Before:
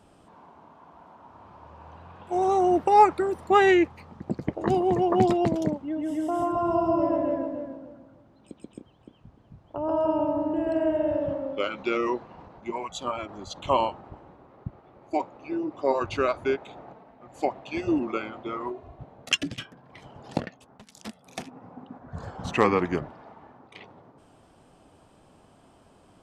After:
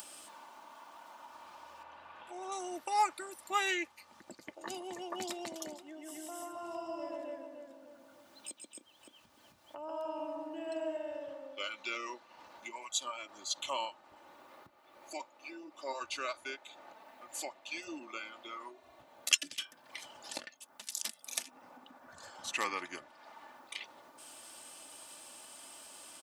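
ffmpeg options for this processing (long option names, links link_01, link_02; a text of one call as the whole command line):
ffmpeg -i in.wav -filter_complex "[0:a]asettb=1/sr,asplit=3[link_01][link_02][link_03];[link_01]atrim=end=1.834[link_04];[link_02]atrim=start=1.83:end=2.52,asetpts=PTS-STARTPTS,afade=type=in:duration=0.004:curve=qsin,afade=type=out:start_time=0.686:duration=0.004:curve=qsin,bass=frequency=250:gain=-1,treble=frequency=4000:gain=-14[link_05];[link_03]atrim=start=2.516[link_06];[link_04][link_05]acrossfade=duration=0.004:curve1=hsin:curve2=qsin[link_07];[link_07][link_06]acrossfade=duration=0.004:curve1=qsin:curve2=hsin,asplit=2[link_08][link_09];[link_09]afade=type=in:start_time=4.82:duration=0.01,afade=type=out:start_time=5.34:duration=0.01,aecho=0:1:480|960|1440|1920|2400:0.188365|0.103601|0.0569804|0.0313392|0.0172366[link_10];[link_08][link_10]amix=inputs=2:normalize=0,asettb=1/sr,asplit=3[link_11][link_12][link_13];[link_11]atrim=end=10.174[link_14];[link_12]atrim=start=10.17:end=10.97,asetpts=PTS-STARTPTS,afade=type=in:duration=0.004:curve=qsin,afade=type=out:start_time=0.796:duration=0.004:curve=qsin,aecho=1:1:6.1:0.65,atrim=end_sample=35280[link_15];[link_13]atrim=start=10.966[link_16];[link_14][link_15]acrossfade=duration=0.004:curve1=hsin:curve2=qsin[link_17];[link_17][link_16]acrossfade=duration=0.004:curve1=qsin:curve2=hsin,acompressor=mode=upward:threshold=-27dB:ratio=2.5,aderivative,aecho=1:1:3.4:0.45,volume=3.5dB" out.wav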